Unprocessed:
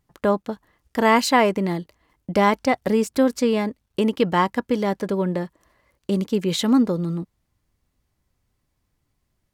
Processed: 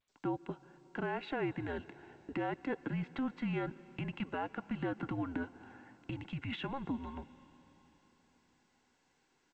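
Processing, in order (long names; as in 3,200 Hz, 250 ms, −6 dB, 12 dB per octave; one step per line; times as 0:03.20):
fade in at the beginning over 1.98 s
high-pass filter 230 Hz 6 dB per octave
0:03.22–0:05.30: parametric band 1,500 Hz +5.5 dB 0.21 octaves
comb filter 1.7 ms, depth 47%
downward compressor 20 to 1, threshold −33 dBFS, peak gain reduction 20.5 dB
brickwall limiter −30.5 dBFS, peak gain reduction 10 dB
convolution reverb RT60 4.3 s, pre-delay 95 ms, DRR 18.5 dB
single-sideband voice off tune −270 Hz 430–3,200 Hz
level +5.5 dB
G.722 64 kbit/s 16,000 Hz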